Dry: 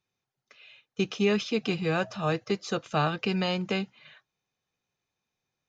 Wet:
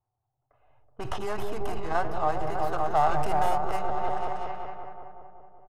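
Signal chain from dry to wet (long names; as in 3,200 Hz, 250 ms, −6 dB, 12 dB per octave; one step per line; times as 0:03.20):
stylus tracing distortion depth 0.29 ms
tilt shelving filter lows +5.5 dB, about 770 Hz
notch filter 2,400 Hz, Q 9.2
on a send: echo whose low-pass opens from repeat to repeat 188 ms, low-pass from 400 Hz, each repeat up 1 octave, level −3 dB
on the sum: rectangular room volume 3,600 cubic metres, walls furnished, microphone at 0.41 metres
transient designer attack −2 dB, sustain +7 dB
brickwall limiter −18.5 dBFS, peak gain reduction 8 dB
low-pass that shuts in the quiet parts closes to 690 Hz, open at −23 dBFS
drawn EQ curve 120 Hz 0 dB, 180 Hz −24 dB, 300 Hz −11 dB, 500 Hz −10 dB, 740 Hz +10 dB, 3,600 Hz −7 dB
0:03.09–0:03.51: leveller curve on the samples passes 1
downsampling to 32,000 Hz
every ending faded ahead of time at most 110 dB per second
level +3.5 dB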